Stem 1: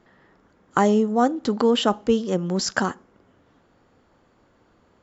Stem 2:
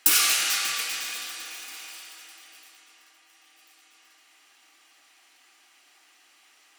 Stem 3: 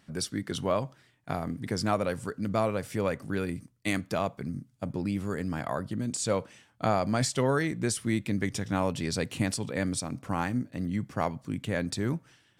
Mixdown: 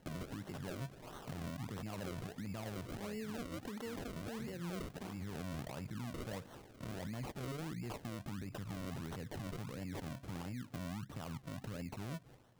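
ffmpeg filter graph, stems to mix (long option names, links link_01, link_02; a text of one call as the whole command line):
ffmpeg -i stem1.wav -i stem2.wav -i stem3.wav -filter_complex "[0:a]acompressor=threshold=-24dB:ratio=6,adelay=2200,volume=1dB[link_01];[1:a]volume=-17dB[link_02];[2:a]lowshelf=frequency=240:gain=11,alimiter=limit=-19.5dB:level=0:latency=1:release=45,volume=-5.5dB,asplit=2[link_03][link_04];[link_04]apad=whole_len=299355[link_05];[link_02][link_05]sidechaincompress=threshold=-46dB:ratio=12:attack=5.3:release=219[link_06];[link_01][link_03]amix=inputs=2:normalize=0,equalizer=frequency=7300:width=2.3:gain=12.5,acompressor=threshold=-36dB:ratio=6,volume=0dB[link_07];[link_06][link_07]amix=inputs=2:normalize=0,highshelf=frequency=10000:gain=3.5,acrusher=samples=36:mix=1:aa=0.000001:lfo=1:lforange=36:lforate=1.5,alimiter=level_in=12.5dB:limit=-24dB:level=0:latency=1:release=112,volume=-12.5dB" out.wav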